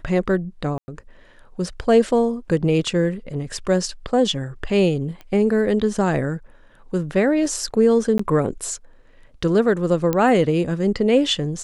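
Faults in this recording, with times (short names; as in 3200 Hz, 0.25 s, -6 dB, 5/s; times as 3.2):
0.78–0.88 gap 0.1 s
5.21 pop -24 dBFS
8.18–8.19 gap 14 ms
10.13 pop -8 dBFS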